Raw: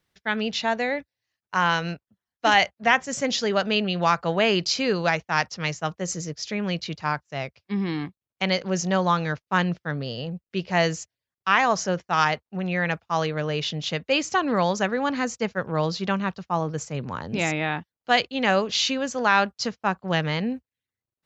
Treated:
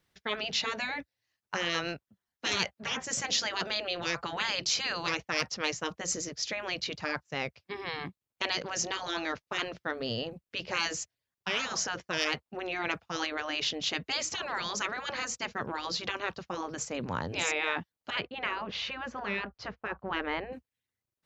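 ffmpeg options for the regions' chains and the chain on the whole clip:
-filter_complex "[0:a]asettb=1/sr,asplit=3[s0][s1][s2];[s0]atrim=end=18.104[s3];[s1]atrim=start=18.1:end=20.53,asetpts=PTS-STARTPTS,afade=t=in:d=0.004:c=qsin,afade=t=out:st=2.426:d=0.004:c=qsin,lowpass=1800,asubboost=boost=11:cutoff=62[s4];[s2]atrim=start=20.526[s5];[s3][s4]acrossfade=d=0.004:c1=hsin:c2=qsin[s6];[s6][s5]acrossfade=d=0.004:c1=qsin:c2=hsin,afftfilt=real='re*lt(hypot(re,im),0.178)':imag='im*lt(hypot(re,im),0.178)':win_size=1024:overlap=0.75,acontrast=70,volume=0.473"

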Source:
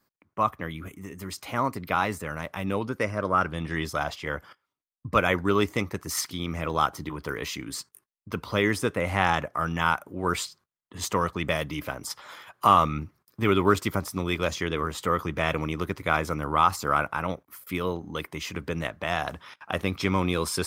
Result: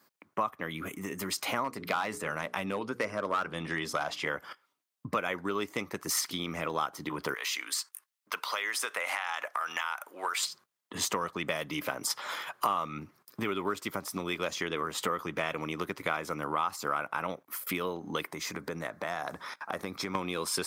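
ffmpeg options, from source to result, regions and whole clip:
-filter_complex "[0:a]asettb=1/sr,asplit=3[s0][s1][s2];[s0]atrim=end=1.644[s3];[s1]atrim=start=1.64:end=4.28,asetpts=PTS-STARTPTS,afade=t=in:d=0.004:c=qsin,afade=t=out:st=2.636:d=0.004:c=qsin,lowpass=12000,asoftclip=type=hard:threshold=0.141,bandreject=f=60:t=h:w=6,bandreject=f=120:t=h:w=6,bandreject=f=180:t=h:w=6,bandreject=f=240:t=h:w=6,bandreject=f=300:t=h:w=6,bandreject=f=360:t=h:w=6,bandreject=f=420:t=h:w=6,bandreject=f=480:t=h:w=6[s4];[s2]atrim=start=4.276[s5];[s3][s4]acrossfade=d=0.004:c1=hsin:c2=qsin[s6];[s6][s5]acrossfade=d=0.004:c1=qsin:c2=hsin,asettb=1/sr,asplit=3[s7][s8][s9];[s7]atrim=end=7.344[s10];[s8]atrim=start=7.34:end=10.43,asetpts=PTS-STARTPTS,afade=t=in:d=0.004:c=qsin,afade=t=out:st=3.086:d=0.004:c=qsin,highpass=970,acompressor=threshold=0.0224:ratio=6:attack=3.2:release=140:knee=1:detection=peak[s11];[s9]atrim=start=10.426[s12];[s10][s11]acrossfade=d=0.004:c1=hsin:c2=qsin[s13];[s13][s12]acrossfade=d=0.004:c1=qsin:c2=hsin,asettb=1/sr,asplit=3[s14][s15][s16];[s14]atrim=end=18.324[s17];[s15]atrim=start=18.32:end=20.15,asetpts=PTS-STARTPTS,afade=t=in:d=0.004:c=qsin,afade=t=out:st=1.826:d=0.004:c=qsin,equalizer=f=2900:t=o:w=0.4:g=-14.5,acompressor=threshold=0.00708:ratio=2:attack=3.2:release=140:knee=1:detection=peak[s18];[s16]atrim=start=20.146[s19];[s17][s18]acrossfade=d=0.004:c1=hsin:c2=qsin[s20];[s20][s19]acrossfade=d=0.004:c1=qsin:c2=hsin,acompressor=threshold=0.0178:ratio=6,highpass=220,equalizer=f=330:t=o:w=1.5:g=-2,volume=2.37"

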